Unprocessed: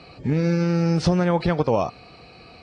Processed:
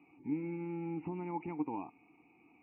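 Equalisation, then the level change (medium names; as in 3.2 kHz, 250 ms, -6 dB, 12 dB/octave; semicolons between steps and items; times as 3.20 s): vowel filter u; brick-wall FIR low-pass 2.9 kHz; -5.0 dB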